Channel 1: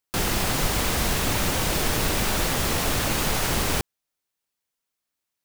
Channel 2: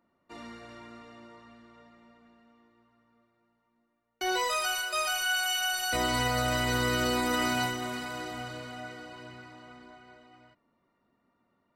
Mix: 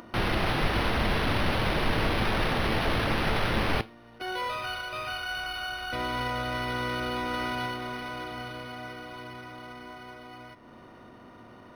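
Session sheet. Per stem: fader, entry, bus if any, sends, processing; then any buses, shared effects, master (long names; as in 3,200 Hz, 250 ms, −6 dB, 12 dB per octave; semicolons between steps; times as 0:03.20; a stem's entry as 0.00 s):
+2.5 dB, 0.00 s, no send, no processing
−0.5 dB, 0.00 s, no send, compressor on every frequency bin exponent 0.6; upward compression, threshold −33 dBFS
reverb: not used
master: tuned comb filter 110 Hz, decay 0.27 s, harmonics all, mix 50%; linearly interpolated sample-rate reduction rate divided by 6×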